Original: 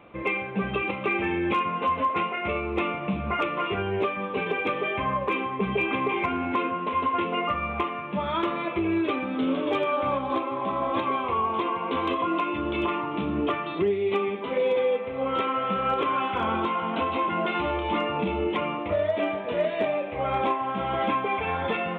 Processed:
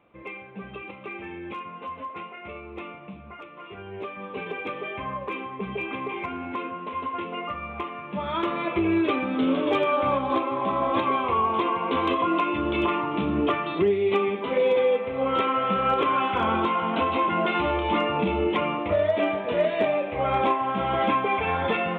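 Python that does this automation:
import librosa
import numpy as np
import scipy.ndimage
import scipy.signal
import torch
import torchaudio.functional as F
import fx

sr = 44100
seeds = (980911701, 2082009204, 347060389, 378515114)

y = fx.gain(x, sr, db=fx.line((2.93, -11.0), (3.47, -17.0), (4.29, -5.5), (7.73, -5.5), (8.77, 2.5)))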